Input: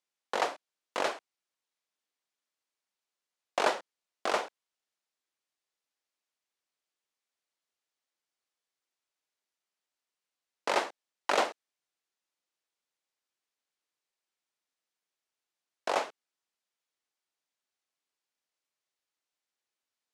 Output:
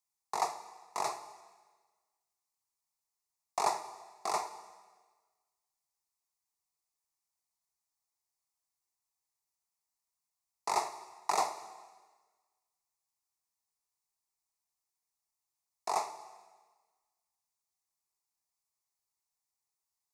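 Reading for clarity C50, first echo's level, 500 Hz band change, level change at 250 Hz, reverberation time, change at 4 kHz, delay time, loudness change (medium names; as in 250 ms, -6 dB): 12.0 dB, no echo, -8.0 dB, -9.0 dB, 1.4 s, -6.0 dB, no echo, -3.5 dB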